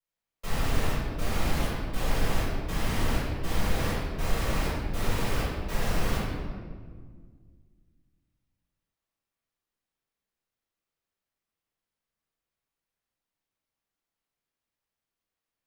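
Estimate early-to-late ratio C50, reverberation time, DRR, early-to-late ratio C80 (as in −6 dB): −2.0 dB, 1.7 s, −11.5 dB, 0.5 dB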